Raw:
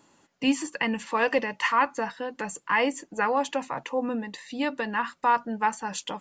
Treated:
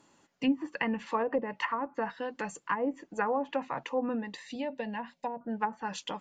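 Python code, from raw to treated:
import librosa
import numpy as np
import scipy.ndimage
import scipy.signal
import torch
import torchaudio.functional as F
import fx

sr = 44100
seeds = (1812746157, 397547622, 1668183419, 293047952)

y = fx.env_lowpass_down(x, sr, base_hz=530.0, full_db=-19.5)
y = fx.fixed_phaser(y, sr, hz=340.0, stages=6, at=(4.55, 5.41))
y = y * librosa.db_to_amplitude(-3.0)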